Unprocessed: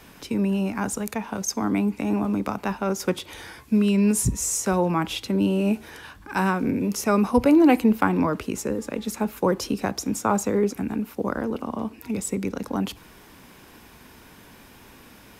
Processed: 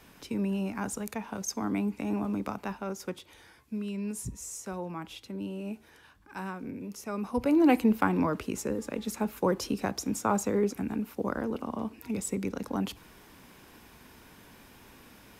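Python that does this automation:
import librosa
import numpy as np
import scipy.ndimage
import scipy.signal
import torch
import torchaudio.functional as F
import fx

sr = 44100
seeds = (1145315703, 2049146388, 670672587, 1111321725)

y = fx.gain(x, sr, db=fx.line((2.49, -7.0), (3.4, -15.0), (7.12, -15.0), (7.69, -5.0)))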